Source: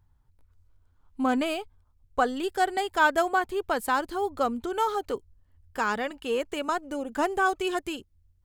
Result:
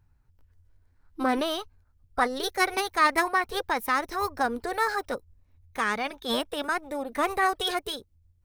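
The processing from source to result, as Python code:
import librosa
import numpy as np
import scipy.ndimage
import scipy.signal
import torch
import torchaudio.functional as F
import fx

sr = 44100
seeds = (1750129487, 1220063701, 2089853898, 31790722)

y = fx.formant_shift(x, sr, semitones=4)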